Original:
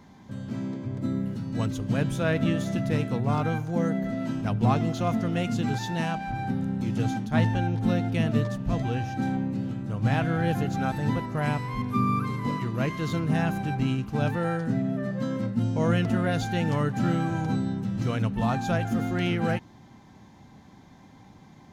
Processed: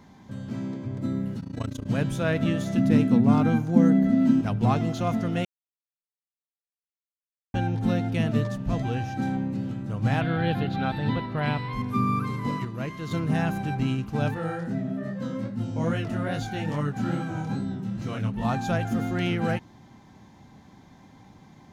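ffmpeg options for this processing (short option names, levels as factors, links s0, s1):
-filter_complex "[0:a]asettb=1/sr,asplit=3[s0][s1][s2];[s0]atrim=end=1.404[s3];[s1]atrim=start=1.4:end=1.86,asetpts=PTS-STARTPTS,afade=t=in:d=0.004:c=qsin,afade=t=out:st=0.456:d=0.004:c=qsin,tremolo=f=28:d=0.919[s4];[s2]atrim=start=1.856[s5];[s3][s4]acrossfade=d=0.004:c1=hsin:c2=qsin[s6];[s6][s5]acrossfade=d=0.004:c1=qsin:c2=hsin,asettb=1/sr,asplit=3[s7][s8][s9];[s7]atrim=end=2.774[s10];[s8]atrim=start=2.77:end=4.41,asetpts=PTS-STARTPTS,afade=t=in:d=0.004:c=qsin,afade=t=out:st=1.636:d=0.004:c=qsin,equalizer=f=240:w=2.4:g=14.5[s11];[s9]atrim=start=4.406[s12];[s10][s11]acrossfade=d=0.004:c1=hsin:c2=qsin[s13];[s13][s12]acrossfade=d=0.004:c1=qsin:c2=hsin,asettb=1/sr,asplit=3[s14][s15][s16];[s14]atrim=end=10.214[s17];[s15]atrim=start=10.21:end=11.73,asetpts=PTS-STARTPTS,afade=t=in:d=0.004:c=qsin,afade=t=out:st=1.516:d=0.004:c=qsin,highshelf=f=5000:t=q:w=3:g=-9.5[s18];[s16]atrim=start=11.726[s19];[s17][s18]acrossfade=d=0.004:c1=hsin:c2=qsin[s20];[s20][s19]acrossfade=d=0.004:c1=qsin:c2=hsin,asettb=1/sr,asplit=3[s21][s22][s23];[s21]atrim=end=14.344[s24];[s22]atrim=start=14.34:end=18.45,asetpts=PTS-STARTPTS,afade=t=in:d=0.004:c=qsin,afade=t=out:st=4.106:d=0.004:c=qsin,flanger=delay=19.5:depth=7.1:speed=2.4[s25];[s23]atrim=start=18.446[s26];[s24][s25]acrossfade=d=0.004:c1=hsin:c2=qsin[s27];[s27][s26]acrossfade=d=0.004:c1=qsin:c2=hsin,asplit=5[s28][s29][s30][s31][s32];[s28]atrim=end=5.45,asetpts=PTS-STARTPTS,afade=t=out:st=5.446:d=0.004:c=hsin[s33];[s29]atrim=start=5.45:end=7.54,asetpts=PTS-STARTPTS,volume=0[s34];[s30]atrim=start=7.54:end=12.652,asetpts=PTS-STARTPTS,afade=t=in:d=0.004:c=hsin[s35];[s31]atrim=start=12.648:end=13.112,asetpts=PTS-STARTPTS,volume=0.562[s36];[s32]atrim=start=13.108[s37];[s33][s34][s35]concat=n=3:v=0:a=1[s38];[s38][s36]acrossfade=d=0.004:c1=hsin:c2=hsin[s39];[s39][s37]acrossfade=d=0.004:c1=hsin:c2=hsin"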